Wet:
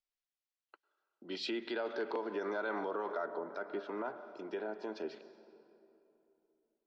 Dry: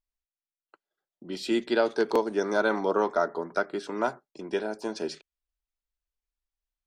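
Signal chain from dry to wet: reverb RT60 3.0 s, pre-delay 94 ms, DRR 16 dB; limiter -23 dBFS, peak gain reduction 10.5 dB; three-band isolator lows -13 dB, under 240 Hz, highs -23 dB, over 5800 Hz; treble ducked by the level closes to 2600 Hz, closed at -30.5 dBFS; high shelf 2000 Hz +7.5 dB, from 3.26 s -2 dB; gain -5 dB

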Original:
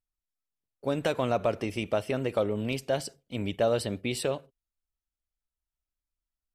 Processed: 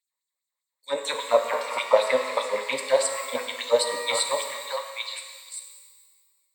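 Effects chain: ripple EQ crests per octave 1, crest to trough 15 dB; delay with a stepping band-pass 0.456 s, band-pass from 1100 Hz, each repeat 1.4 oct, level -1 dB; LFO high-pass sine 5 Hz 570–7100 Hz; shimmer reverb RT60 1.6 s, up +12 st, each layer -8 dB, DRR 4.5 dB; gain +3 dB

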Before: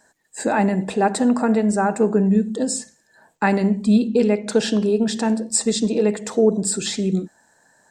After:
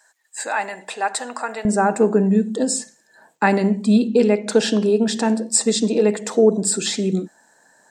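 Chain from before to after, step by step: HPF 960 Hz 12 dB/oct, from 1.65 s 190 Hz; gain +2.5 dB

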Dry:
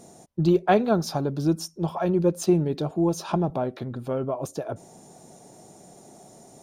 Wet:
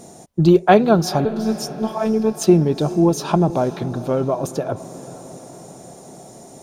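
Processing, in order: 1.25–2.41 robotiser 219 Hz; diffused feedback echo 0.457 s, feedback 59%, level -16 dB; gain +7.5 dB

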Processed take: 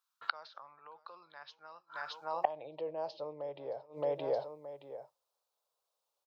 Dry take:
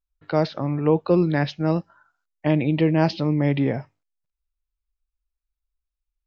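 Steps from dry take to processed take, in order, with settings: limiter -13 dBFS, peak gain reduction 6.5 dB; graphic EQ 125/250/500/1000/2000/4000 Hz +12/-9/+6/+9/-12/+5 dB; feedback echo 0.621 s, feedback 23%, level -21.5 dB; flipped gate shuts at -26 dBFS, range -29 dB; high-pass sweep 1400 Hz -> 530 Hz, 2–2.78; gain +7.5 dB

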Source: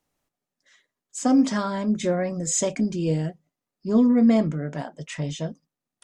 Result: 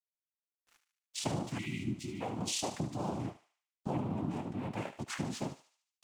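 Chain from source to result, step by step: noise vocoder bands 4; compressor 10:1, threshold -29 dBFS, peak gain reduction 18 dB; spectral delete 1.59–2.21, 400–1900 Hz; crossover distortion -56.5 dBFS; on a send: thinning echo 74 ms, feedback 51%, high-pass 1100 Hz, level -10 dB; on the sum: gain -3 dB

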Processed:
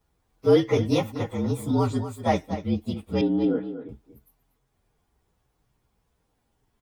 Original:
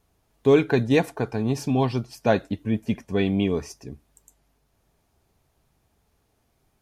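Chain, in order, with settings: inharmonic rescaling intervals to 115%; 3.21–3.89 speaker cabinet 240–2800 Hz, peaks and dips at 280 Hz +10 dB, 1100 Hz -8 dB, 1600 Hz +5 dB, 2500 Hz -9 dB; outdoor echo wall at 41 m, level -11 dB

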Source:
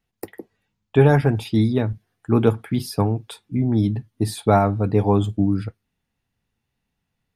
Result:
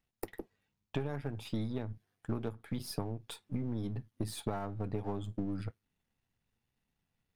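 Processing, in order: half-wave gain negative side -7 dB; compressor 12:1, threshold -28 dBFS, peak gain reduction 19 dB; gain -4 dB

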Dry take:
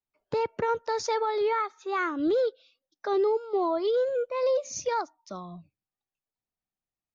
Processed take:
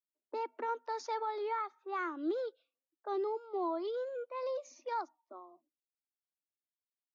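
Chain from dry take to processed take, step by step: low-pass opened by the level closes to 310 Hz, open at -24.5 dBFS; rippled Chebyshev high-pass 240 Hz, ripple 6 dB; gain -6.5 dB

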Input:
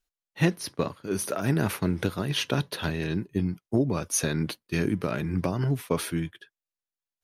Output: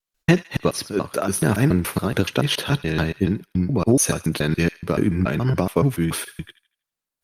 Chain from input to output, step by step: slices in reverse order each 0.142 s, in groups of 2; thin delay 80 ms, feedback 36%, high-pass 1500 Hz, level -14.5 dB; gain +7 dB; Opus 48 kbps 48000 Hz

